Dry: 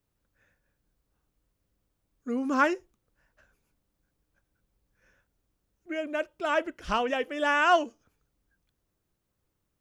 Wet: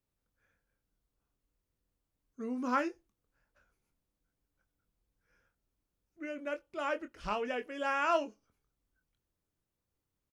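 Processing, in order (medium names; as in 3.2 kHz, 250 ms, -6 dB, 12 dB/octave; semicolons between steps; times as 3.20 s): tape speed -5%; doubling 24 ms -9.5 dB; trim -8 dB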